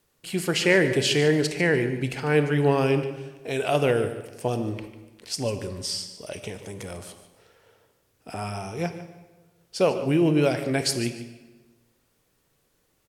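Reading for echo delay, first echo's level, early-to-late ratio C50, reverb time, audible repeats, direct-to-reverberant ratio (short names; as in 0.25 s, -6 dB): 0.147 s, -14.0 dB, 9.0 dB, 1.3 s, 2, 8.5 dB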